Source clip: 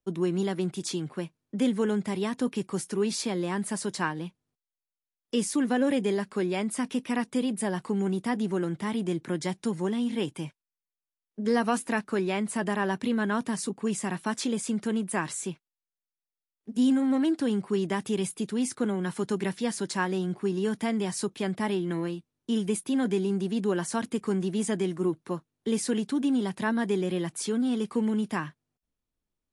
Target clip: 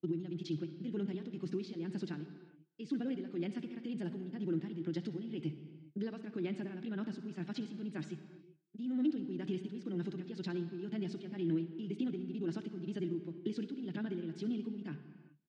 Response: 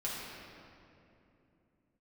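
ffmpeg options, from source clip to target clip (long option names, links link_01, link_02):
-filter_complex "[0:a]equalizer=frequency=970:width=0.52:gain=-9.5,alimiter=limit=-23.5dB:level=0:latency=1:release=232,acompressor=threshold=-41dB:ratio=2,asetrate=42027,aresample=44100,tremolo=f=1:d=0.62,atempo=2,highpass=140,equalizer=frequency=150:width_type=q:width=4:gain=7,equalizer=frequency=320:width_type=q:width=4:gain=10,equalizer=frequency=1000:width_type=q:width=4:gain=-7,lowpass=frequency=4300:width=0.5412,lowpass=frequency=4300:width=1.3066,asplit=2[link_01][link_02];[link_02]adelay=239.1,volume=-28dB,highshelf=frequency=4000:gain=-5.38[link_03];[link_01][link_03]amix=inputs=2:normalize=0,asplit=2[link_04][link_05];[1:a]atrim=start_sample=2205,afade=type=out:start_time=0.4:duration=0.01,atrim=end_sample=18081,adelay=60[link_06];[link_05][link_06]afir=irnorm=-1:irlink=0,volume=-13dB[link_07];[link_04][link_07]amix=inputs=2:normalize=0"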